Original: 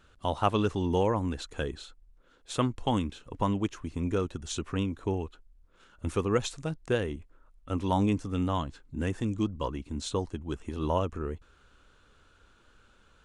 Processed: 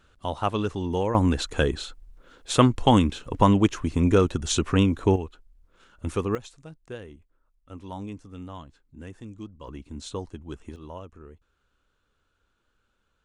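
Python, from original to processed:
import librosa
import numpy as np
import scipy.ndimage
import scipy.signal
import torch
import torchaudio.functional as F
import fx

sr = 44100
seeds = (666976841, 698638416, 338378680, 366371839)

y = fx.gain(x, sr, db=fx.steps((0.0, 0.0), (1.15, 10.0), (5.16, 2.0), (6.35, -10.5), (9.68, -3.0), (10.76, -12.0)))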